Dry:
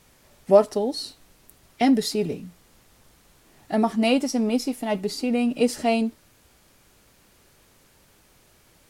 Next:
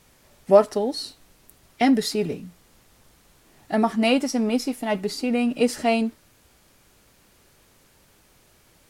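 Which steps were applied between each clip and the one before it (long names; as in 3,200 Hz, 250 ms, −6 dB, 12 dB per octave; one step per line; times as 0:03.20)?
dynamic equaliser 1,600 Hz, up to +5 dB, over −41 dBFS, Q 1.1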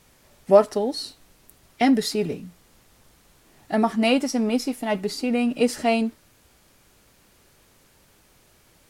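no processing that can be heard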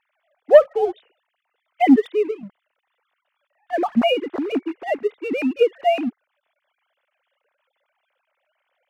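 three sine waves on the formant tracks
leveller curve on the samples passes 1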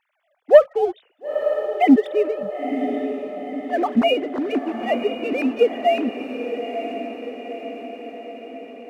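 feedback delay with all-pass diffusion 951 ms, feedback 59%, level −8 dB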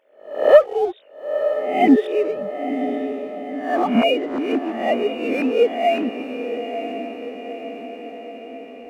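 peak hold with a rise ahead of every peak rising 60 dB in 0.52 s
level −1 dB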